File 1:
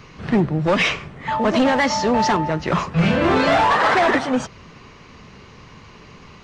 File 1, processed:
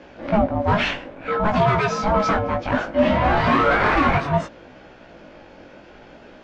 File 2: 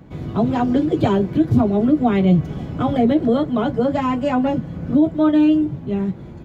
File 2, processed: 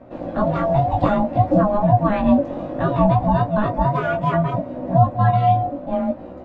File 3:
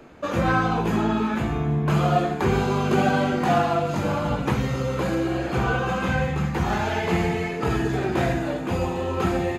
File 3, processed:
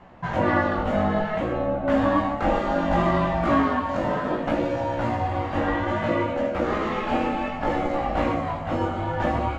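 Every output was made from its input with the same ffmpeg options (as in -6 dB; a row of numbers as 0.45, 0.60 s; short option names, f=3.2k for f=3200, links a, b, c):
-af "aemphasis=mode=reproduction:type=75fm,aeval=exprs='val(0)*sin(2*PI*420*n/s)':c=same,flanger=delay=16:depth=5.1:speed=0.62,volume=4.5dB"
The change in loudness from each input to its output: -1.5, -0.5, -1.0 LU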